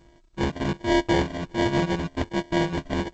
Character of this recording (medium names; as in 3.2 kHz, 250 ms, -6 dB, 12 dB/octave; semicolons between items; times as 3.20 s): a buzz of ramps at a fixed pitch in blocks of 128 samples; phasing stages 4, 1.3 Hz, lowest notch 410–2400 Hz; aliases and images of a low sample rate 1.3 kHz, jitter 0%; G.722